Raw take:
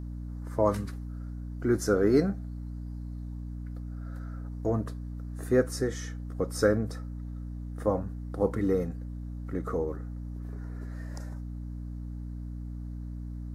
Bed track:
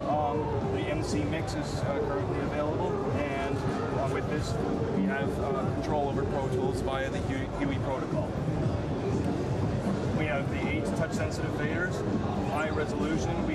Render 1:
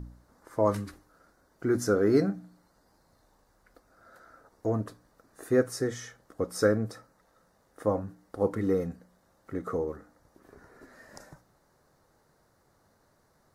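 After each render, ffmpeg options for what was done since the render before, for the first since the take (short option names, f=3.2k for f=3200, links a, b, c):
-af "bandreject=f=60:t=h:w=4,bandreject=f=120:t=h:w=4,bandreject=f=180:t=h:w=4,bandreject=f=240:t=h:w=4,bandreject=f=300:t=h:w=4"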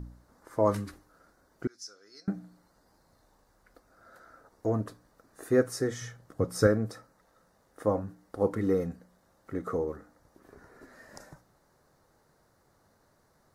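-filter_complex "[0:a]asettb=1/sr,asplit=3[a][b][c];[a]atrim=end=1.674[d];[b]atrim=start=1.67:end=2.28,asetpts=PTS-STARTPTS,afade=t=in:d=0.004:c=qsin,afade=t=out:st=0.606:d=0.004:c=qsin,bandpass=f=5.2k:t=q:w=4.9[e];[c]atrim=start=2.276[f];[d][e]acrossfade=d=0.004:c1=hsin:c2=qsin[g];[g][f]acrossfade=d=0.004:c1=qsin:c2=hsin,asettb=1/sr,asplit=3[h][i][j];[h]atrim=end=6.014[k];[i]atrim=start=6.01:end=6.67,asetpts=PTS-STARTPTS,afade=t=in:d=0.004:c=qsin,afade=t=out:st=0.656:d=0.004:c=qsin,equalizer=f=120:w=1.5:g=13[l];[j]atrim=start=6.666[m];[k][l]acrossfade=d=0.004:c1=hsin:c2=qsin[n];[n][m]acrossfade=d=0.004:c1=qsin:c2=hsin"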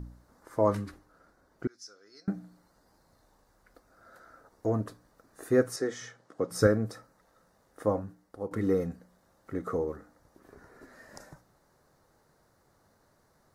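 -filter_complex "[0:a]asettb=1/sr,asplit=3[a][b][c];[a]atrim=end=0.664[d];[b]atrim=start=0.66:end=2.28,asetpts=PTS-STARTPTS,afade=t=in:d=0.004:c=qsin,afade=t=out:st=1.616:d=0.004:c=qsin,highshelf=f=4.7k:g=-6.5[e];[c]atrim=start=2.276[f];[d][e]acrossfade=d=0.004:c1=hsin:c2=qsin[g];[g][f]acrossfade=d=0.004:c1=qsin:c2=hsin,asettb=1/sr,asplit=3[h][i][j];[h]atrim=end=5.764[k];[i]atrim=start=5.76:end=6.51,asetpts=PTS-STARTPTS,afade=t=in:d=0.004:c=qsin,afade=t=out:st=0.746:d=0.004:c=qsin,highpass=260,lowpass=7.3k[l];[j]atrim=start=6.506[m];[k][l]acrossfade=d=0.004:c1=hsin:c2=qsin[n];[n][m]acrossfade=d=0.004:c1=qsin:c2=hsin,asplit=2[o][p];[o]atrim=end=8.51,asetpts=PTS-STARTPTS,afade=t=out:st=7.85:d=0.66:silence=0.251189[q];[p]atrim=start=8.51,asetpts=PTS-STARTPTS,afade=t=in:d=0.004:c=hsin:silence=0.251189[r];[q][r]concat=n=2:v=0:a=1"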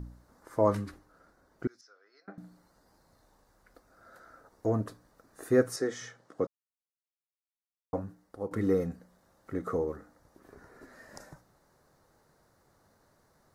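-filter_complex "[0:a]asettb=1/sr,asplit=3[a][b][c];[a]atrim=end=1.814[d];[b]atrim=start=1.81:end=2.38,asetpts=PTS-STARTPTS,afade=t=in:d=0.004:c=qsin,afade=t=out:st=0.566:d=0.004:c=qsin,highpass=620,lowpass=2.4k[e];[c]atrim=start=2.376[f];[d][e]acrossfade=d=0.004:c1=hsin:c2=qsin[g];[g][f]acrossfade=d=0.004:c1=qsin:c2=hsin,asplit=3[h][i][j];[h]atrim=end=6.47,asetpts=PTS-STARTPTS,afade=t=out:st=6.466:d=0.004:c=hsin[k];[i]atrim=start=6.47:end=7.93,asetpts=PTS-STARTPTS,volume=0[l];[j]atrim=start=7.93,asetpts=PTS-STARTPTS,afade=t=in:d=0.004:c=hsin[m];[k][l][m]concat=n=3:v=0:a=1"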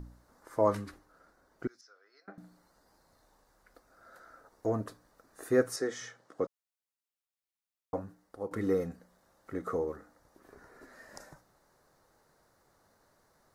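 -af "equalizer=f=110:w=0.4:g=-5.5"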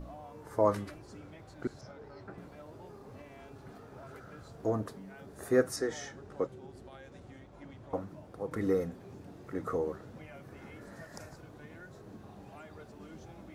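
-filter_complex "[1:a]volume=-20.5dB[a];[0:a][a]amix=inputs=2:normalize=0"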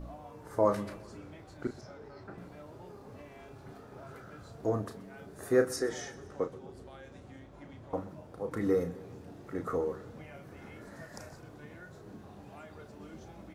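-filter_complex "[0:a]asplit=2[a][b];[b]adelay=34,volume=-8.5dB[c];[a][c]amix=inputs=2:normalize=0,aecho=1:1:128|256|384|512:0.106|0.0583|0.032|0.0176"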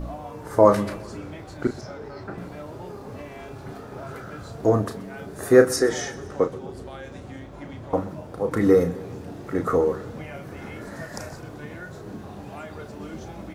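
-af "volume=11.5dB"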